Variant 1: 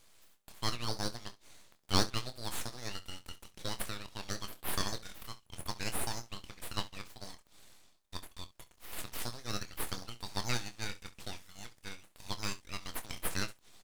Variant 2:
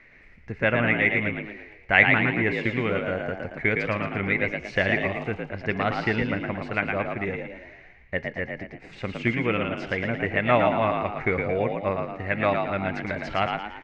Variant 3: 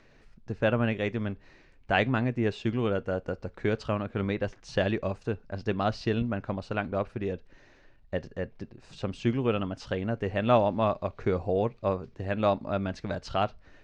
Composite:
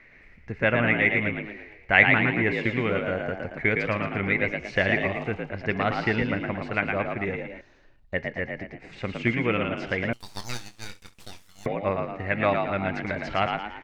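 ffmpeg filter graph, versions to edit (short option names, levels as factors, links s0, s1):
-filter_complex "[1:a]asplit=3[s0][s1][s2];[s0]atrim=end=7.612[s3];[2:a]atrim=start=7.608:end=8.142[s4];[s1]atrim=start=8.138:end=10.132[s5];[0:a]atrim=start=10.128:end=11.662[s6];[s2]atrim=start=11.658[s7];[s3][s4]acrossfade=d=0.004:c1=hsin:c2=hsin[s8];[s8][s5]acrossfade=d=0.004:c1=hsin:c2=hsin[s9];[s9][s6]acrossfade=d=0.004:c1=hsin:c2=hsin[s10];[s10][s7]acrossfade=d=0.004:c1=hsin:c2=hsin"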